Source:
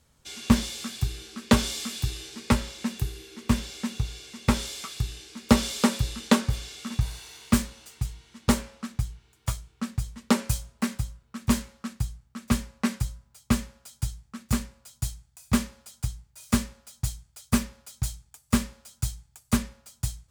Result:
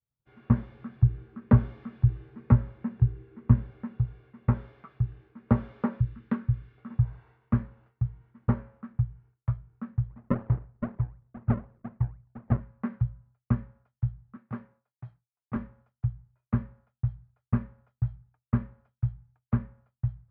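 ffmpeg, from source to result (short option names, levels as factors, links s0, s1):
-filter_complex "[0:a]asettb=1/sr,asplit=3[s0][s1][s2];[s0]atrim=end=0.714[s3];[s1]atrim=start=0.71:end=3.84,asetpts=PTS-STARTPTS,afade=t=in:d=0.004:c=qsin,afade=t=out:st=3.126:d=0.004:c=qsin,lowshelf=f=230:g=6.5[s4];[s2]atrim=start=3.836[s5];[s3][s4]acrossfade=d=0.004:c1=hsin:c2=qsin[s6];[s6][s5]acrossfade=d=0.004:c1=qsin:c2=hsin,asettb=1/sr,asplit=3[s7][s8][s9];[s7]atrim=end=6.004[s10];[s8]atrim=start=6:end=6.78,asetpts=PTS-STARTPTS,afade=t=in:d=0.004:c=qsin,afade=t=out:st=0.776:d=0.004:c=qsin,equalizer=f=670:w=1:g=-13[s11];[s9]atrim=start=6.776[s12];[s10][s11]acrossfade=d=0.004:c1=hsin:c2=qsin[s13];[s13][s12]acrossfade=d=0.004:c1=qsin:c2=hsin,asplit=3[s14][s15][s16];[s14]afade=t=out:st=10.09:d=0.02[s17];[s15]acrusher=samples=38:mix=1:aa=0.000001:lfo=1:lforange=38:lforate=4,afade=t=in:st=10.09:d=0.02,afade=t=out:st=12.59:d=0.02[s18];[s16]afade=t=in:st=12.59:d=0.02[s19];[s17][s18][s19]amix=inputs=3:normalize=0,asettb=1/sr,asplit=3[s20][s21][s22];[s20]atrim=end=14.364[s23];[s21]atrim=start=14.36:end=15.56,asetpts=PTS-STARTPTS,afade=t=in:d=0.004:c=qsin,afade=t=out:st=1.196:d=0.004:c=qsin,highpass=260[s24];[s22]atrim=start=15.556[s25];[s23][s24]acrossfade=d=0.004:c1=hsin:c2=qsin[s26];[s26][s25]acrossfade=d=0.004:c1=qsin:c2=hsin,lowpass=f=1600:w=0.5412,lowpass=f=1600:w=1.3066,agate=range=0.0224:threshold=0.00316:ratio=3:detection=peak,equalizer=f=120:t=o:w=0.63:g=14,volume=0.422"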